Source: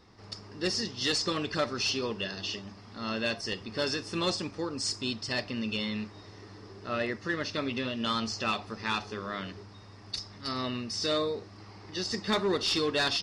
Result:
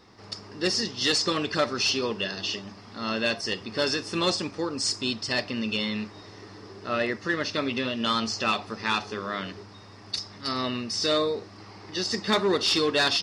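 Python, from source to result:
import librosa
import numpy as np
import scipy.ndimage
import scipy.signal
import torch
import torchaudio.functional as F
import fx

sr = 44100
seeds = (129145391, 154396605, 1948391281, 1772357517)

y = fx.low_shelf(x, sr, hz=88.0, db=-11.0)
y = y * librosa.db_to_amplitude(5.0)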